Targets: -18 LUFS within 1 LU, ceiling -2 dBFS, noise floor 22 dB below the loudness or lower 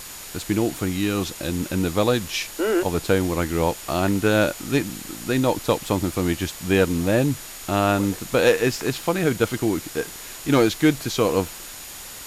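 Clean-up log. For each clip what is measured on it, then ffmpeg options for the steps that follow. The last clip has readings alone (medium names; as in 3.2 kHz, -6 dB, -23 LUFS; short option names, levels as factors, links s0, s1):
steady tone 6.9 kHz; tone level -45 dBFS; noise floor -38 dBFS; noise floor target -45 dBFS; loudness -22.5 LUFS; peak level -7.0 dBFS; loudness target -18.0 LUFS
-> -af "bandreject=f=6900:w=30"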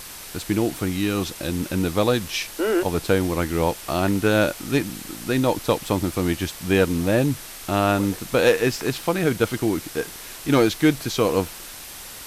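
steady tone not found; noise floor -39 dBFS; noise floor target -45 dBFS
-> -af "afftdn=nr=6:nf=-39"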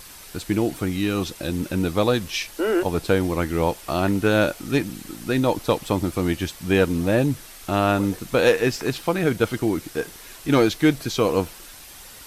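noise floor -43 dBFS; noise floor target -45 dBFS
-> -af "afftdn=nr=6:nf=-43"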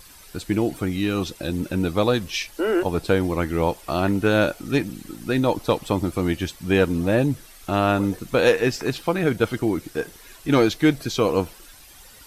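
noise floor -47 dBFS; loudness -22.5 LUFS; peak level -7.5 dBFS; loudness target -18.0 LUFS
-> -af "volume=1.68"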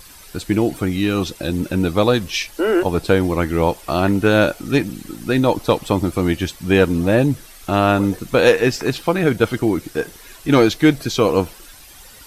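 loudness -18.0 LUFS; peak level -3.0 dBFS; noise floor -43 dBFS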